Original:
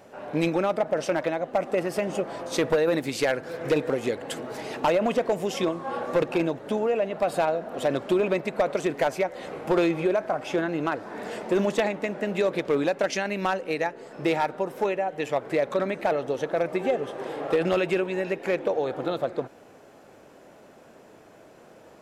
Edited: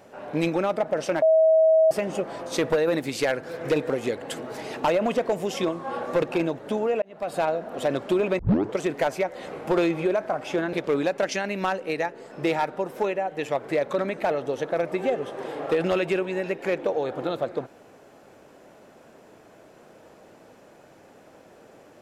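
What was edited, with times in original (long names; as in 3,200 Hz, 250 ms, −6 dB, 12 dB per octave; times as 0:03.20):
0:01.22–0:01.91: beep over 640 Hz −14 dBFS
0:07.02–0:07.45: fade in
0:08.39: tape start 0.39 s
0:10.73–0:12.54: remove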